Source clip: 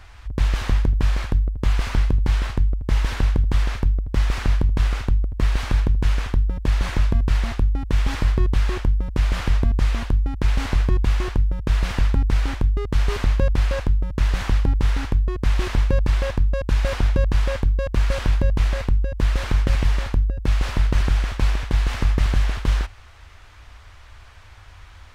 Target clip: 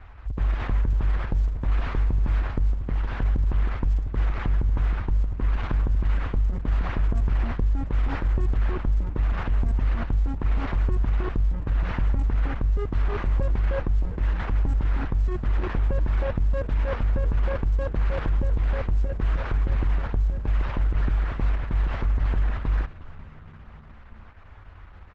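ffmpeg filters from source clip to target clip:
-filter_complex "[0:a]asettb=1/sr,asplit=3[s0][s1][s2];[s0]atrim=end=2.714[s3];[s1]atrim=start=2.71:end=3.22,asetpts=PTS-STARTPTS,afade=t=in:d=0.004:c=qsin,afade=t=out:st=0.506:d=0.004:c=qsin,acompressor=threshold=0.112:ratio=20[s4];[s2]atrim=start=3.216[s5];[s3][s4]acrossfade=d=0.004:c1=hsin:c2=qsin[s6];[s6][s5]acrossfade=d=0.004:c1=qsin:c2=hsin,lowpass=1700,alimiter=limit=0.158:level=0:latency=1:release=62,asplit=2[s7][s8];[s8]asplit=4[s9][s10][s11][s12];[s9]adelay=355,afreqshift=-67,volume=0.133[s13];[s10]adelay=710,afreqshift=-134,volume=0.0668[s14];[s11]adelay=1065,afreqshift=-201,volume=0.0335[s15];[s12]adelay=1420,afreqshift=-268,volume=0.0166[s16];[s13][s14][s15][s16]amix=inputs=4:normalize=0[s17];[s7][s17]amix=inputs=2:normalize=0" -ar 48000 -c:a libopus -b:a 10k

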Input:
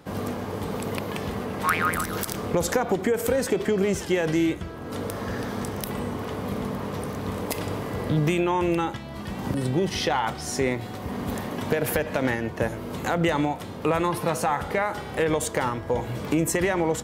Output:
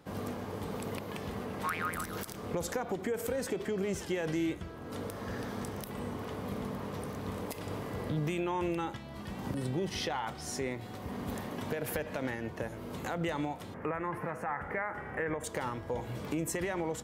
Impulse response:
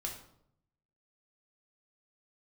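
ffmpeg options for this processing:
-filter_complex "[0:a]asettb=1/sr,asplit=3[s0][s1][s2];[s0]atrim=end=13.744[s3];[s1]atrim=start=13.74:end=15.44,asetpts=PTS-STARTPTS,afade=t=in:d=0.004:c=qsin,afade=t=out:st=1.696:d=0.004:c=qsin,highshelf=f=2700:t=q:w=3:g=-13[s4];[s2]atrim=start=15.436[s5];[s3][s4]acrossfade=d=0.004:c1=hsin:c2=qsin[s6];[s6][s5]acrossfade=d=0.004:c1=qsin:c2=hsin,alimiter=limit=0.168:level=0:latency=1:release=214,volume=0.398"

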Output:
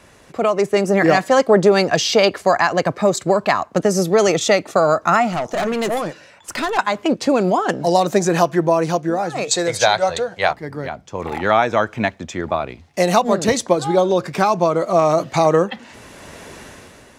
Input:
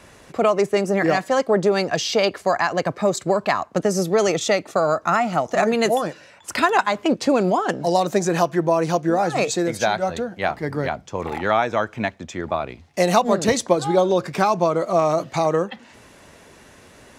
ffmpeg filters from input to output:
-filter_complex "[0:a]asettb=1/sr,asplit=3[s0][s1][s2];[s0]atrim=end=9.514[s3];[s1]atrim=start=9.51:end=10.53,asetpts=PTS-STARTPTS,afade=t=in:d=0.004:c=qsin,afade=t=out:st=1.016:d=0.004:c=qsin,equalizer=f=125:t=o:w=1:g=9,equalizer=f=250:t=o:w=1:g=-9,equalizer=f=500:t=o:w=1:g=9,equalizer=f=1000:t=o:w=1:g=7,equalizer=f=2000:t=o:w=1:g=6,equalizer=f=4000:t=o:w=1:g=10,equalizer=f=8000:t=o:w=1:g=11[s4];[s2]atrim=start=10.526[s5];[s3][s4]acrossfade=d=0.004:c1=hsin:c2=qsin[s6];[s6][s5]acrossfade=d=0.004:c1=qsin:c2=hsin,dynaudnorm=f=130:g=11:m=5.96,asplit=3[s7][s8][s9];[s7]afade=t=out:st=5.31:d=0.02[s10];[s8]aeval=exprs='(tanh(6.31*val(0)+0.25)-tanh(0.25))/6.31':c=same,afade=t=in:st=5.31:d=0.02,afade=t=out:st=6.77:d=0.02[s11];[s9]afade=t=in:st=6.77:d=0.02[s12];[s10][s11][s12]amix=inputs=3:normalize=0,volume=0.891"

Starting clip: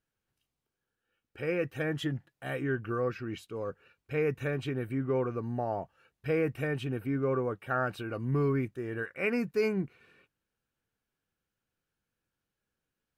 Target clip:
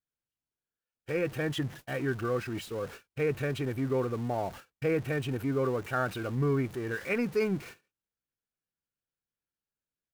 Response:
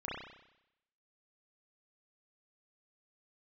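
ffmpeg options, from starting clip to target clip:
-af "aeval=exprs='val(0)+0.5*0.00944*sgn(val(0))':c=same,atempo=1.3,agate=range=0.00316:threshold=0.00708:ratio=16:detection=peak"

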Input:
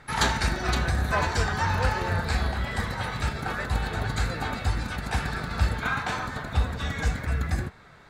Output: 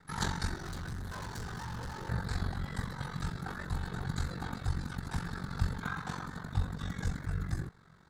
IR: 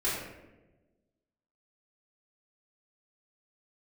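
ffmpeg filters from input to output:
-filter_complex "[0:a]aeval=exprs='val(0)*sin(2*PI*23*n/s)':c=same,asettb=1/sr,asplit=3[s0][s1][s2];[s0]atrim=end=0.564[s3];[s1]atrim=start=0.56:end=2.09,asetpts=PTS-STARTPTS,afade=t=in:d=0.004:c=qsin,afade=t=out:st=1.526:d=0.004:c=qsin,volume=37.6,asoftclip=hard,volume=0.0266[s4];[s2]atrim=start=2.086[s5];[s3][s4]acrossfade=d=0.004:c1=hsin:c2=qsin[s6];[s6][s5]acrossfade=d=0.004:c1=qsin:c2=hsin,equalizer=f=160:t=o:w=0.67:g=6,equalizer=f=630:t=o:w=0.67:g=-7,equalizer=f=2500:t=o:w=0.67:g=-11,volume=0.531"

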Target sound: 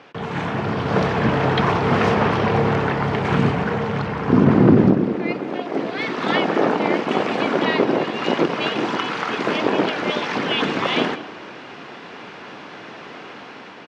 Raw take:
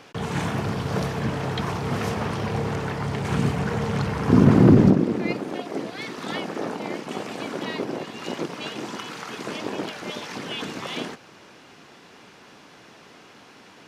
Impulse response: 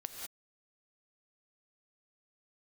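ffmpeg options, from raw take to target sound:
-filter_complex "[0:a]lowpass=3500,asplit=2[s0][s1];[s1]adelay=190,lowpass=f=2000:p=1,volume=0.126,asplit=2[s2][s3];[s3]adelay=190,lowpass=f=2000:p=1,volume=0.32,asplit=2[s4][s5];[s5]adelay=190,lowpass=f=2000:p=1,volume=0.32[s6];[s0][s2][s4][s6]amix=inputs=4:normalize=0,asplit=2[s7][s8];[1:a]atrim=start_sample=2205,lowpass=3700,lowshelf=f=170:g=10.5[s9];[s8][s9]afir=irnorm=-1:irlink=0,volume=0.299[s10];[s7][s10]amix=inputs=2:normalize=0,dynaudnorm=f=130:g=13:m=3.16,highpass=f=240:p=1,volume=1.19"

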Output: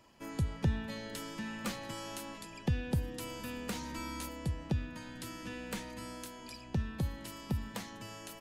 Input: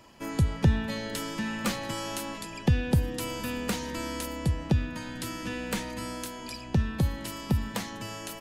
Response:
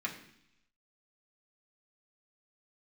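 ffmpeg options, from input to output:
-filter_complex "[0:a]asettb=1/sr,asplit=3[s0][s1][s2];[s0]atrim=end=3.744[s3];[s1]atrim=start=3.74:end=4.29,asetpts=PTS-STARTPTS,afade=t=in:d=0.004:c=qsin,afade=t=out:st=0.546:d=0.004:c=qsin,asplit=2[s4][s5];[s5]adelay=13,volume=0.708[s6];[s4][s6]amix=inputs=2:normalize=0,atrim=end_sample=24255[s7];[s2]atrim=start=4.286[s8];[s3][s7]acrossfade=d=0.004:c1=hsin:c2=qsin[s9];[s9][s8]acrossfade=d=0.004:c1=qsin:c2=hsin,volume=0.376"

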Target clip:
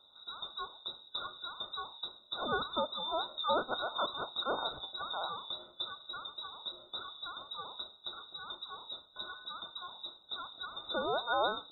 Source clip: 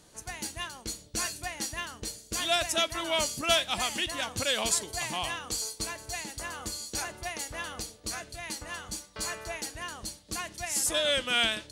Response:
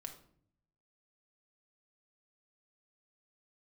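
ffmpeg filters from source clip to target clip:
-filter_complex "[0:a]asettb=1/sr,asplit=3[s0][s1][s2];[s0]atrim=end=5.374[s3];[s1]atrim=start=5.37:end=5.94,asetpts=PTS-STARTPTS,afade=t=in:d=0.004:c=qsin,afade=t=out:st=0.566:d=0.004:c=qsin,equalizer=f=450:t=o:w=0.67:g=13.5[s4];[s2]atrim=start=5.936[s5];[s3][s4]acrossfade=d=0.004:c1=hsin:c2=qsin[s6];[s6][s5]acrossfade=d=0.004:c1=qsin:c2=hsin,afftfilt=real='re*(1-between(b*sr/4096,410,2400))':imag='im*(1-between(b*sr/4096,410,2400))':win_size=4096:overlap=0.75,lowpass=f=3300:t=q:w=0.5098,lowpass=f=3300:t=q:w=0.6013,lowpass=f=3300:t=q:w=0.9,lowpass=f=3300:t=q:w=2.563,afreqshift=-3900"

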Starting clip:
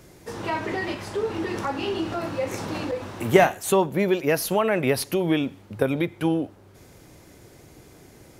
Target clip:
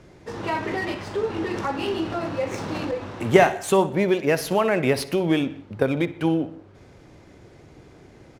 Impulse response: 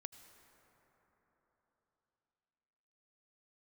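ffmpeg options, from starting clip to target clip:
-filter_complex "[0:a]aecho=1:1:62|124|186|248:0.15|0.0613|0.0252|0.0103,asplit=2[s0][s1];[1:a]atrim=start_sample=2205,afade=t=out:st=0.26:d=0.01,atrim=end_sample=11907[s2];[s1][s2]afir=irnorm=-1:irlink=0,volume=1.5[s3];[s0][s3]amix=inputs=2:normalize=0,adynamicsmooth=sensitivity=6.5:basefreq=4300,volume=0.631"

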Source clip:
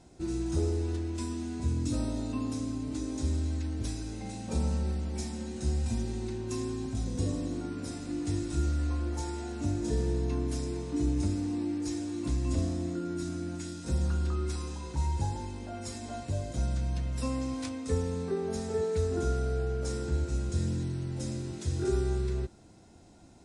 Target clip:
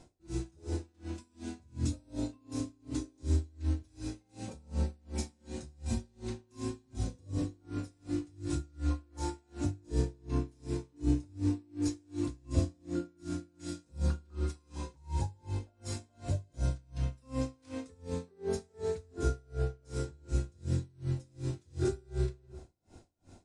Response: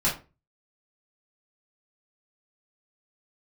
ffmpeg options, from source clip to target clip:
-filter_complex "[0:a]asplit=2[s0][s1];[1:a]atrim=start_sample=2205,asetrate=25137,aresample=44100[s2];[s1][s2]afir=irnorm=-1:irlink=0,volume=0.106[s3];[s0][s3]amix=inputs=2:normalize=0,aeval=exprs='val(0)*pow(10,-34*(0.5-0.5*cos(2*PI*2.7*n/s))/20)':c=same"

